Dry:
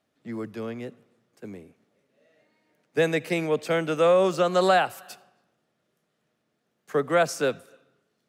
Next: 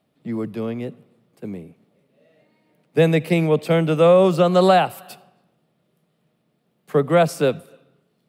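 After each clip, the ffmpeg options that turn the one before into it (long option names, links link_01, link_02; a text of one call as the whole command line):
ffmpeg -i in.wav -af "equalizer=frequency=160:width_type=o:width=0.67:gain=8,equalizer=frequency=1600:width_type=o:width=0.67:gain=-7,equalizer=frequency=6300:width_type=o:width=0.67:gain=-10,volume=6dB" out.wav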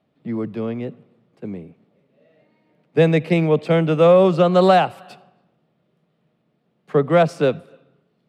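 ffmpeg -i in.wav -af "adynamicsmooth=sensitivity=1:basefreq=4800,volume=1dB" out.wav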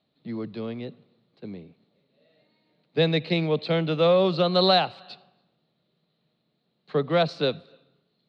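ffmpeg -i in.wav -af "lowpass=frequency=4100:width_type=q:width=11,volume=-7.5dB" out.wav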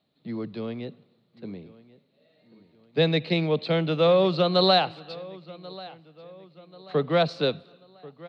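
ffmpeg -i in.wav -filter_complex "[0:a]asplit=2[link_01][link_02];[link_02]adelay=1087,lowpass=frequency=4800:poles=1,volume=-20dB,asplit=2[link_03][link_04];[link_04]adelay=1087,lowpass=frequency=4800:poles=1,volume=0.45,asplit=2[link_05][link_06];[link_06]adelay=1087,lowpass=frequency=4800:poles=1,volume=0.45[link_07];[link_01][link_03][link_05][link_07]amix=inputs=4:normalize=0" out.wav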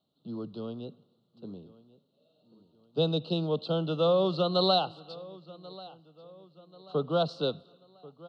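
ffmpeg -i in.wav -af "asuperstop=centerf=2000:order=12:qfactor=1.5,volume=-5dB" out.wav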